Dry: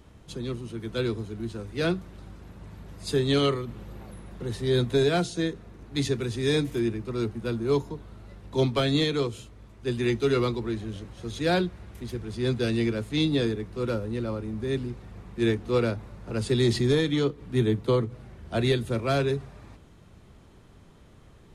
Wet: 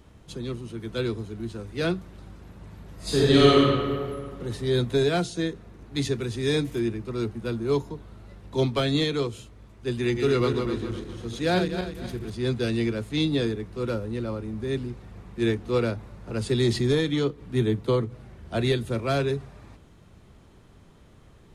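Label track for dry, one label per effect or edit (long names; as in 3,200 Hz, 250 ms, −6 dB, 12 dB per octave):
2.950000	3.620000	thrown reverb, RT60 1.9 s, DRR −7 dB
10.020000	12.300000	feedback delay that plays each chunk backwards 128 ms, feedback 59%, level −6 dB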